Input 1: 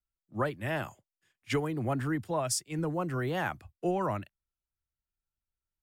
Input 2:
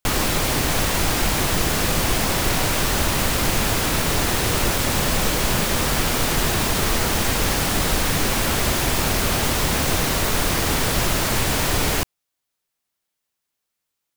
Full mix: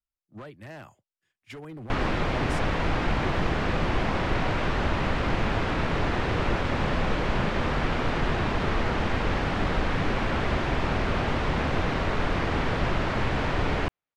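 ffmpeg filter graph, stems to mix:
ffmpeg -i stem1.wav -i stem2.wav -filter_complex "[0:a]alimiter=level_in=3.5dB:limit=-24dB:level=0:latency=1:release=140,volume=-3.5dB,aeval=exprs='0.0282*(abs(mod(val(0)/0.0282+3,4)-2)-1)':channel_layout=same,volume=-4dB[link_01];[1:a]lowpass=2400,adelay=1850,volume=-3.5dB[link_02];[link_01][link_02]amix=inputs=2:normalize=0,highshelf=frequency=9300:gain=-10.5" out.wav

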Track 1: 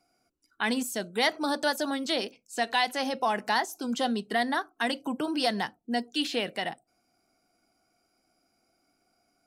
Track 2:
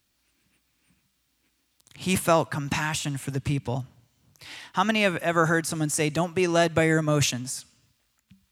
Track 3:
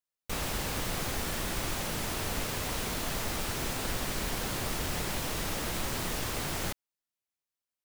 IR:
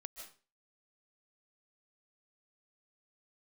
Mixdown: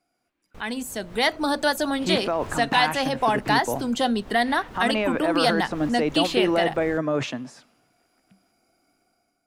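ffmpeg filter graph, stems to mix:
-filter_complex "[0:a]equalizer=frequency=5400:width=4.3:gain=-5,volume=-4dB,asplit=2[link_01][link_02];[1:a]highpass=320,aemphasis=mode=reproduction:type=50fm,alimiter=limit=-15.5dB:level=0:latency=1,volume=-2dB[link_03];[2:a]adelay=250,volume=-9.5dB[link_04];[link_02]apad=whole_len=357206[link_05];[link_04][link_05]sidechaincompress=threshold=-45dB:ratio=6:attack=28:release=185[link_06];[link_03][link_06]amix=inputs=2:normalize=0,lowpass=frequency=1000:poles=1,alimiter=level_in=0.5dB:limit=-24dB:level=0:latency=1:release=16,volume=-0.5dB,volume=0dB[link_07];[link_01][link_07]amix=inputs=2:normalize=0,dynaudnorm=framelen=690:gausssize=3:maxgain=9.5dB"

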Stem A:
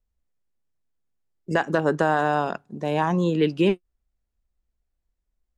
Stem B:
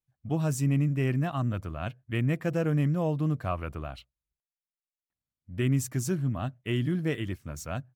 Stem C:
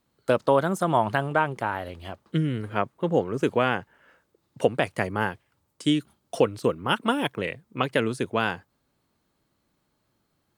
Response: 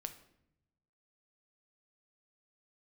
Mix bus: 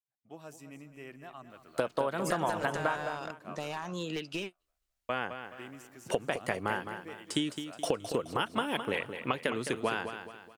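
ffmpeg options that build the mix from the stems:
-filter_complex "[0:a]tiltshelf=frequency=970:gain=-8.5,acompressor=threshold=-29dB:ratio=20,aeval=exprs='clip(val(0),-1,0.0355)':channel_layout=same,adelay=750,volume=-2.5dB[link_01];[1:a]highpass=400,deesser=0.75,volume=-12.5dB,asplit=2[link_02][link_03];[link_03]volume=-12dB[link_04];[2:a]lowshelf=frequency=270:gain=-8.5,acompressor=threshold=-30dB:ratio=10,adelay=1500,volume=3dB,asplit=3[link_05][link_06][link_07];[link_05]atrim=end=2.97,asetpts=PTS-STARTPTS,afade=type=out:start_time=2.966:duration=0.004:curve=hsin[link_08];[link_06]atrim=start=2.97:end=5.09,asetpts=PTS-STARTPTS,volume=0[link_09];[link_07]atrim=start=5.09,asetpts=PTS-STARTPTS,afade=type=in:duration=0.004:curve=hsin[link_10];[link_08][link_09][link_10]concat=n=3:v=0:a=1,asplit=2[link_11][link_12];[link_12]volume=-9dB[link_13];[link_04][link_13]amix=inputs=2:normalize=0,aecho=0:1:212|424|636|848|1060:1|0.39|0.152|0.0593|0.0231[link_14];[link_01][link_02][link_11][link_14]amix=inputs=4:normalize=0"

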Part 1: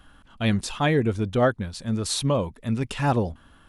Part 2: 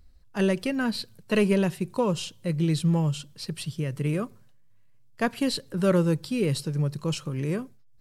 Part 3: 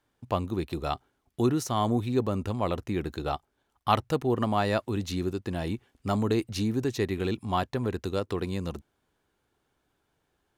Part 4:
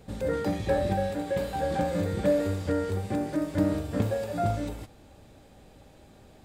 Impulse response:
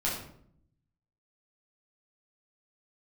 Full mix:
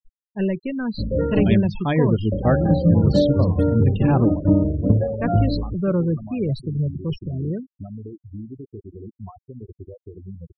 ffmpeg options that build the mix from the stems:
-filter_complex "[0:a]lowpass=6300,bandreject=frequency=50:width_type=h:width=6,bandreject=frequency=100:width_type=h:width=6,bandreject=frequency=150:width_type=h:width=6,bandreject=frequency=200:width_type=h:width=6,adelay=1050,volume=-3dB[link_01];[1:a]equalizer=frequency=160:width=0.73:gain=-2,volume=-3.5dB,asplit=2[link_02][link_03];[2:a]bandreject=frequency=60:width_type=h:width=6,bandreject=frequency=120:width_type=h:width=6,bandreject=frequency=180:width_type=h:width=6,bandreject=frequency=240:width_type=h:width=6,bandreject=frequency=300:width_type=h:width=6,bandreject=frequency=360:width_type=h:width=6,bandreject=frequency=420:width_type=h:width=6,bandreject=frequency=480:width_type=h:width=6,acompressor=threshold=-33dB:ratio=5,adelay=1750,volume=-6dB[link_04];[3:a]lowpass=1500,bandreject=frequency=760:width=12,adelay=900,volume=2.5dB,asplit=3[link_05][link_06][link_07];[link_05]atrim=end=1.54,asetpts=PTS-STARTPTS,afade=type=out:start_time=1.536:duration=0.004:curve=hsin[link_08];[link_06]atrim=start=1.54:end=2.32,asetpts=PTS-STARTPTS,volume=0[link_09];[link_07]atrim=start=2.32,asetpts=PTS-STARTPTS,afade=type=in:duration=0.004:curve=hsin[link_10];[link_08][link_09][link_10]concat=n=3:v=0:a=1[link_11];[link_03]apad=whole_len=208990[link_12];[link_01][link_12]sidechaingate=range=-33dB:threshold=-50dB:ratio=16:detection=peak[link_13];[link_13][link_02][link_04][link_11]amix=inputs=4:normalize=0,afftfilt=real='re*gte(hypot(re,im),0.0398)':imag='im*gte(hypot(re,im),0.0398)':win_size=1024:overlap=0.75,lowshelf=frequency=320:gain=10.5"

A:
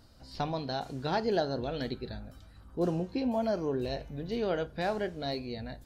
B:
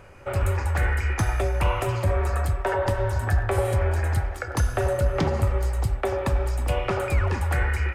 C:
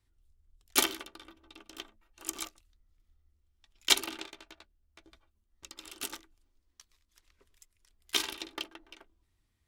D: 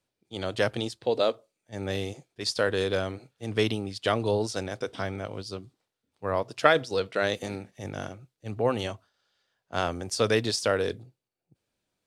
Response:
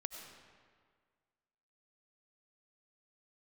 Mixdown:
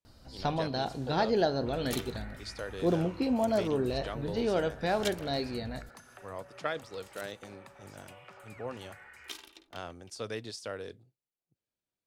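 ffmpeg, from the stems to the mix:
-filter_complex "[0:a]acontrast=49,adelay=50,volume=-5dB,asplit=2[link_01][link_02];[link_02]volume=-14.5dB[link_03];[1:a]highpass=frequency=160:width=0.5412,highpass=frequency=160:width=1.3066,equalizer=frequency=340:width=0.73:gain=-11.5,acompressor=threshold=-38dB:ratio=6,adelay=1400,volume=-13.5dB,asplit=2[link_04][link_05];[link_05]volume=-9.5dB[link_06];[2:a]adelay=1150,volume=-13.5dB[link_07];[3:a]volume=-14dB[link_08];[4:a]atrim=start_sample=2205[link_09];[link_03][link_06]amix=inputs=2:normalize=0[link_10];[link_10][link_09]afir=irnorm=-1:irlink=0[link_11];[link_01][link_04][link_07][link_08][link_11]amix=inputs=5:normalize=0"

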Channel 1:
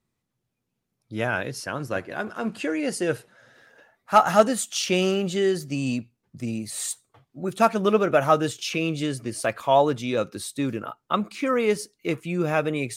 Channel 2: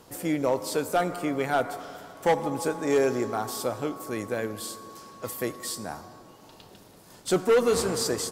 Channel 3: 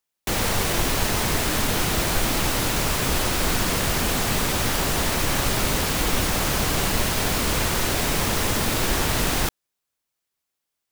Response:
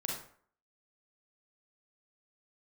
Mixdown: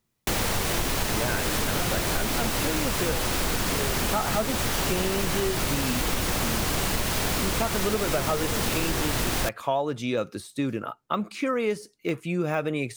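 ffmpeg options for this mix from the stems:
-filter_complex "[0:a]deesser=0.8,volume=0.5dB[link_01];[1:a]adelay=850,volume=-8.5dB[link_02];[2:a]volume=1dB[link_03];[link_01][link_02][link_03]amix=inputs=3:normalize=0,acompressor=threshold=-22dB:ratio=6"

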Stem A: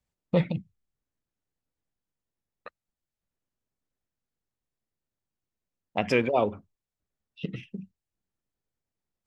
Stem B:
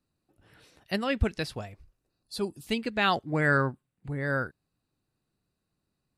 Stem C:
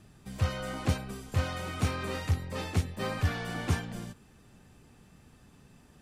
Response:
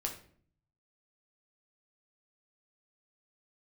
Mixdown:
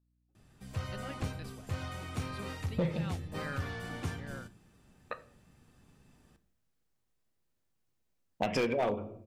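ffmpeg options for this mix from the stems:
-filter_complex "[0:a]adelay=2450,volume=1dB,asplit=2[link_01][link_02];[link_02]volume=-3.5dB[link_03];[1:a]aeval=exprs='val(0)+0.00158*(sin(2*PI*60*n/s)+sin(2*PI*2*60*n/s)/2+sin(2*PI*3*60*n/s)/3+sin(2*PI*4*60*n/s)/4+sin(2*PI*5*60*n/s)/5)':channel_layout=same,volume=-18dB,asplit=2[link_04][link_05];[2:a]adelay=350,volume=-10dB,asplit=2[link_06][link_07];[link_07]volume=-4.5dB[link_08];[link_05]apad=whole_len=516765[link_09];[link_01][link_09]sidechaincompress=threshold=-49dB:ratio=8:attack=28:release=460[link_10];[3:a]atrim=start_sample=2205[link_11];[link_03][link_08]amix=inputs=2:normalize=0[link_12];[link_12][link_11]afir=irnorm=-1:irlink=0[link_13];[link_10][link_04][link_06][link_13]amix=inputs=4:normalize=0,asoftclip=type=hard:threshold=-14dB,acompressor=threshold=-31dB:ratio=3"

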